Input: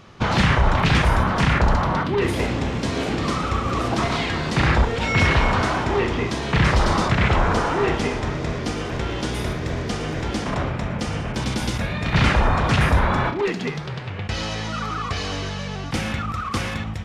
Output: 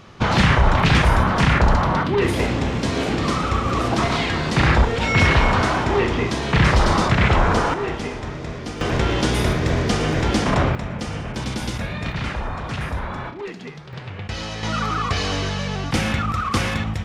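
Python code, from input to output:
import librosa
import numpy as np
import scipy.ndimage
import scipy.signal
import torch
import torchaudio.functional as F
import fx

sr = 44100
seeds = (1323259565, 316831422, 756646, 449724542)

y = fx.gain(x, sr, db=fx.steps((0.0, 2.0), (7.74, -4.5), (8.81, 6.0), (10.75, -2.0), (12.12, -9.0), (13.93, -2.5), (14.63, 4.0)))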